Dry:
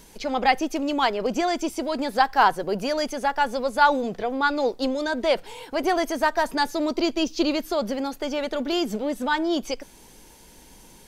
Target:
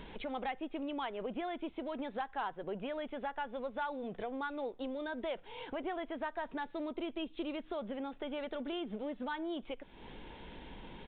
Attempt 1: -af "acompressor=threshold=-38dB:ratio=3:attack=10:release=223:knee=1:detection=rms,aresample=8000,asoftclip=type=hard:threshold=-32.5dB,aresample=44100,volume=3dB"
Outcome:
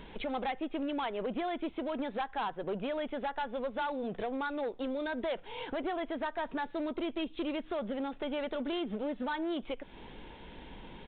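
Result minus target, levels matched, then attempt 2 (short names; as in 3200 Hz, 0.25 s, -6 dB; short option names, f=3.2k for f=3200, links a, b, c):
compressor: peak gain reduction -5 dB
-af "acompressor=threshold=-45.5dB:ratio=3:attack=10:release=223:knee=1:detection=rms,aresample=8000,asoftclip=type=hard:threshold=-32.5dB,aresample=44100,volume=3dB"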